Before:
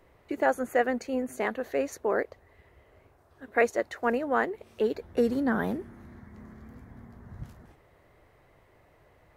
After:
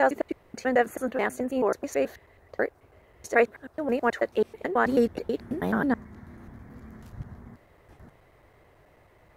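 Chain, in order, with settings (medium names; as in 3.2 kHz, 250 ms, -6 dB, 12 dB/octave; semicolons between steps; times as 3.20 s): slices played last to first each 108 ms, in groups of 5; trim +2.5 dB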